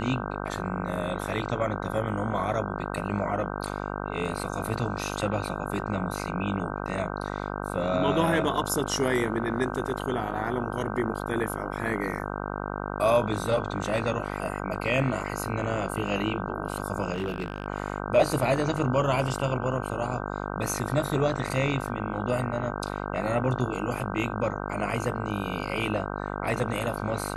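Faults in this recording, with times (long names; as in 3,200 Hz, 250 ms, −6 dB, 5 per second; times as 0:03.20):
mains buzz 50 Hz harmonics 31 −33 dBFS
0:17.12–0:17.66: clipping −24.5 dBFS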